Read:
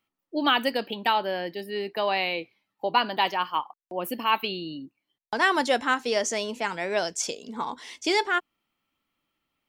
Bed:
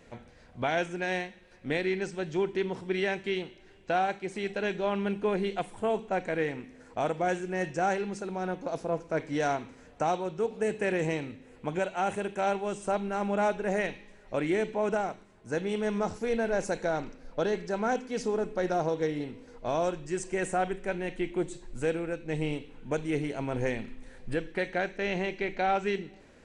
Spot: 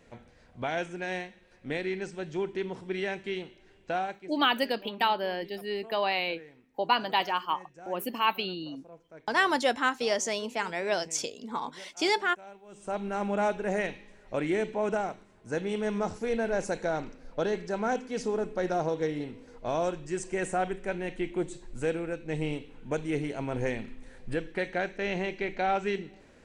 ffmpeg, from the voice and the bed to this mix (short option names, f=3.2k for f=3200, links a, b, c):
-filter_complex "[0:a]adelay=3950,volume=-2.5dB[a];[1:a]volume=16.5dB,afade=t=out:st=3.95:d=0.43:silence=0.141254,afade=t=in:st=12.68:d=0.4:silence=0.105925[b];[a][b]amix=inputs=2:normalize=0"